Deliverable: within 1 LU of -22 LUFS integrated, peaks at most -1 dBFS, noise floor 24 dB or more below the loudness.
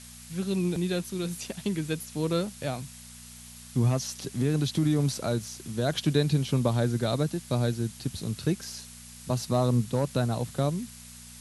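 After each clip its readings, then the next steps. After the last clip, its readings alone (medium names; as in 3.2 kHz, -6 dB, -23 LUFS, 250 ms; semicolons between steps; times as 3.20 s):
hum 60 Hz; highest harmonic 240 Hz; hum level -46 dBFS; noise floor -47 dBFS; noise floor target -53 dBFS; loudness -29.0 LUFS; peak level -11.0 dBFS; loudness target -22.0 LUFS
-> de-hum 60 Hz, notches 4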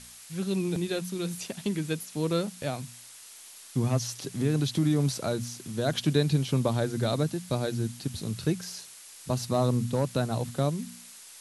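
hum not found; noise floor -49 dBFS; noise floor target -54 dBFS
-> noise reduction 6 dB, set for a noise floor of -49 dBFS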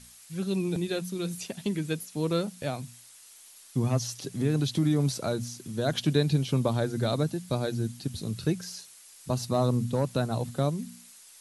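noise floor -52 dBFS; noise floor target -54 dBFS
-> noise reduction 6 dB, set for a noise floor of -52 dBFS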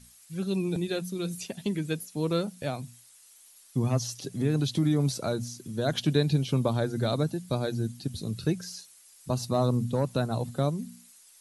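noise floor -56 dBFS; loudness -29.5 LUFS; peak level -11.0 dBFS; loudness target -22.0 LUFS
-> trim +7.5 dB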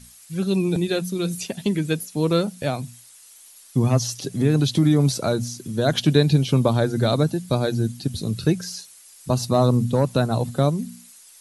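loudness -22.0 LUFS; peak level -3.5 dBFS; noise floor -49 dBFS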